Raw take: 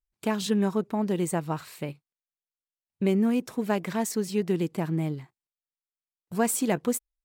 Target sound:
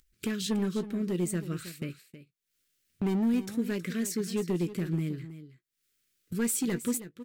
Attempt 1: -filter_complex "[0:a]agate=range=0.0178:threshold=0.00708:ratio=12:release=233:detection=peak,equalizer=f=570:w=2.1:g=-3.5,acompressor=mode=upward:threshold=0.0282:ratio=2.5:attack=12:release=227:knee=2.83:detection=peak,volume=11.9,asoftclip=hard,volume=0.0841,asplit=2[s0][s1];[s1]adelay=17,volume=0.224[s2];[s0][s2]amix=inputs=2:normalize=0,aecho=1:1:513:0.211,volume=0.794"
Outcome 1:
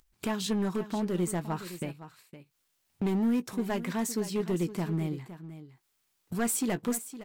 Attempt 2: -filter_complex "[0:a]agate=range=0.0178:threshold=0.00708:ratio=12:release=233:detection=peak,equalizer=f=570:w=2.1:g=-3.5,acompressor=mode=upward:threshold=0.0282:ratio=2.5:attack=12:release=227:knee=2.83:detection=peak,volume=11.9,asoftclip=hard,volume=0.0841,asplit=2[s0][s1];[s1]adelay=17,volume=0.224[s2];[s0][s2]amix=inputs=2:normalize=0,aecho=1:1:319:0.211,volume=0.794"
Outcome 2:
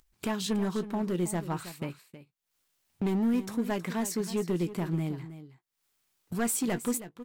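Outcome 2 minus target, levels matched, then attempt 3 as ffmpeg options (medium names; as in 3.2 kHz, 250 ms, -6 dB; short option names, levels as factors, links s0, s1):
1 kHz band +8.0 dB
-filter_complex "[0:a]agate=range=0.0178:threshold=0.00708:ratio=12:release=233:detection=peak,asuperstop=centerf=850:order=4:qfactor=0.9,equalizer=f=570:w=2.1:g=-3.5,acompressor=mode=upward:threshold=0.0282:ratio=2.5:attack=12:release=227:knee=2.83:detection=peak,volume=11.9,asoftclip=hard,volume=0.0841,asplit=2[s0][s1];[s1]adelay=17,volume=0.224[s2];[s0][s2]amix=inputs=2:normalize=0,aecho=1:1:319:0.211,volume=0.794"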